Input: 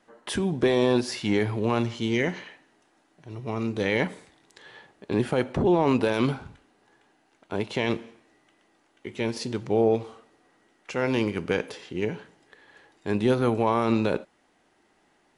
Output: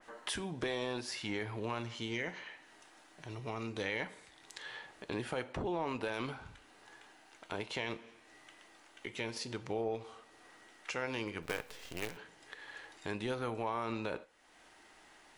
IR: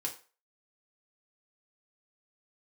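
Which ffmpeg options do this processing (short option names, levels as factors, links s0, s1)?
-filter_complex "[0:a]equalizer=f=200:w=0.33:g=-11,acompressor=threshold=0.00178:ratio=2,asettb=1/sr,asplit=3[s0][s1][s2];[s0]atrim=end=11.424[s3];[s1]atrim=start=11.42:end=12.17,asetpts=PTS-STARTPTS,afade=t=in:d=0.004:c=qsin,afade=t=out:st=0.746:d=0.004:c=qsin,acrusher=bits=8:dc=4:mix=0:aa=0.000001[s4];[s2]atrim=start=12.166[s5];[s3][s4]acrossfade=d=0.004:c1=hsin:c2=qsin[s6];[s6][s5]acrossfade=d=0.004:c1=qsin:c2=hsin,asplit=2[s7][s8];[1:a]atrim=start_sample=2205[s9];[s8][s9]afir=irnorm=-1:irlink=0,volume=0.299[s10];[s7][s10]amix=inputs=2:normalize=0,adynamicequalizer=threshold=0.00158:dfrequency=2500:dqfactor=0.7:tfrequency=2500:tqfactor=0.7:attack=5:release=100:ratio=0.375:range=2.5:mode=cutabove:tftype=highshelf,volume=2.11"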